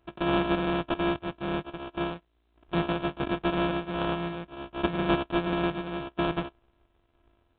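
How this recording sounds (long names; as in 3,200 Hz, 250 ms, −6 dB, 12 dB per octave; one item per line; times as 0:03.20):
a buzz of ramps at a fixed pitch in blocks of 128 samples
sample-and-hold tremolo
aliases and images of a low sample rate 2,000 Hz, jitter 0%
G.726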